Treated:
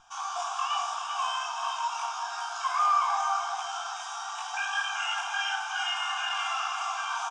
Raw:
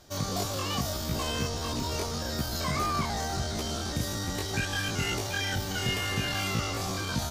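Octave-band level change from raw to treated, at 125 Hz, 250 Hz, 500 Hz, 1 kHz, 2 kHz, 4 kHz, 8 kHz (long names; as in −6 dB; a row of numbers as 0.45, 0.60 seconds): below −40 dB, below −40 dB, −9.5 dB, +7.5 dB, +2.0 dB, −1.0 dB, −4.5 dB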